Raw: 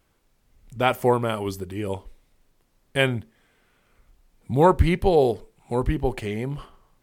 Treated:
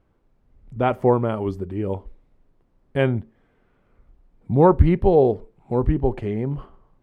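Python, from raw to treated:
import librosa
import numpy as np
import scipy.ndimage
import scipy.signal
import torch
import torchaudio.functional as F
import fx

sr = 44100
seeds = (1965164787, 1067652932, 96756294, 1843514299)

y = fx.curve_eq(x, sr, hz=(320.0, 1100.0, 13000.0), db=(0, -5, -28))
y = y * 10.0 ** (4.0 / 20.0)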